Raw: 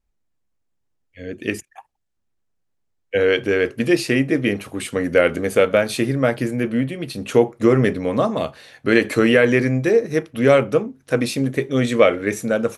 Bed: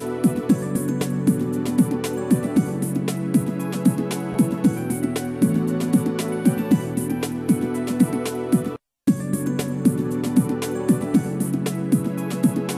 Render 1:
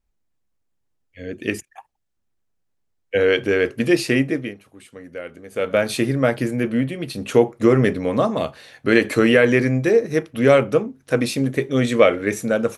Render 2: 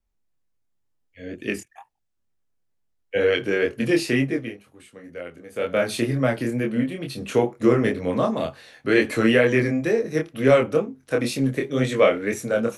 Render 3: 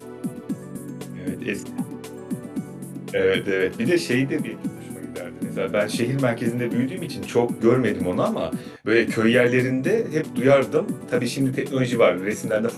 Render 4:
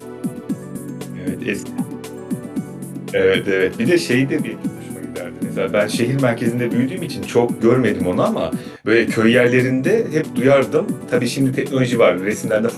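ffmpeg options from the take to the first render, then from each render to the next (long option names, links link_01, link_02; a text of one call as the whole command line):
ffmpeg -i in.wav -filter_complex "[0:a]asplit=3[link_01][link_02][link_03];[link_01]atrim=end=4.55,asetpts=PTS-STARTPTS,afade=type=out:start_time=4.2:duration=0.35:silence=0.133352[link_04];[link_02]atrim=start=4.55:end=5.5,asetpts=PTS-STARTPTS,volume=-17.5dB[link_05];[link_03]atrim=start=5.5,asetpts=PTS-STARTPTS,afade=type=in:duration=0.35:silence=0.133352[link_06];[link_04][link_05][link_06]concat=n=3:v=0:a=1" out.wav
ffmpeg -i in.wav -filter_complex "[0:a]flanger=delay=22.5:depth=4.3:speed=2.1,acrossover=split=170|720|4100[link_01][link_02][link_03][link_04];[link_01]asoftclip=type=hard:threshold=-25.5dB[link_05];[link_05][link_02][link_03][link_04]amix=inputs=4:normalize=0" out.wav
ffmpeg -i in.wav -i bed.wav -filter_complex "[1:a]volume=-11dB[link_01];[0:a][link_01]amix=inputs=2:normalize=0" out.wav
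ffmpeg -i in.wav -af "volume=5dB,alimiter=limit=-3dB:level=0:latency=1" out.wav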